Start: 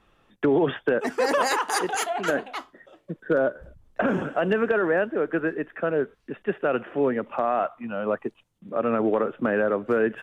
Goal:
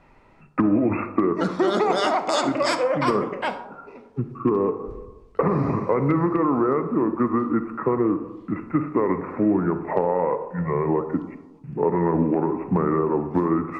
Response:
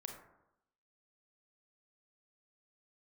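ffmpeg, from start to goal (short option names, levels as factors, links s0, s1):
-filter_complex "[0:a]acompressor=threshold=0.0562:ratio=6,asplit=2[s0][s1];[1:a]atrim=start_sample=2205,lowpass=8200[s2];[s1][s2]afir=irnorm=-1:irlink=0,volume=1.5[s3];[s0][s3]amix=inputs=2:normalize=0,asetrate=32667,aresample=44100,volume=1.26"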